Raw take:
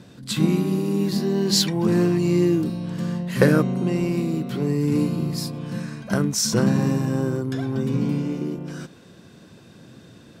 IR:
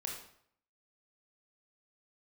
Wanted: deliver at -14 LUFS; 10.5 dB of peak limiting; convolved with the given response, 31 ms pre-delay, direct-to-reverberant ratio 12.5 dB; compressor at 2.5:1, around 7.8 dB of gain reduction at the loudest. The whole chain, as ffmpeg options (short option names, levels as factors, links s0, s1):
-filter_complex "[0:a]acompressor=threshold=0.0708:ratio=2.5,alimiter=limit=0.112:level=0:latency=1,asplit=2[s0][s1];[1:a]atrim=start_sample=2205,adelay=31[s2];[s1][s2]afir=irnorm=-1:irlink=0,volume=0.237[s3];[s0][s3]amix=inputs=2:normalize=0,volume=5.01"